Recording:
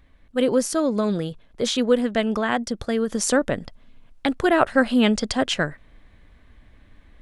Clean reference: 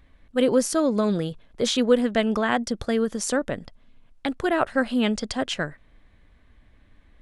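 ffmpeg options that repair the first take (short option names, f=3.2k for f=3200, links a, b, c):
-af "asetnsamples=n=441:p=0,asendcmd='3.09 volume volume -4.5dB',volume=0dB"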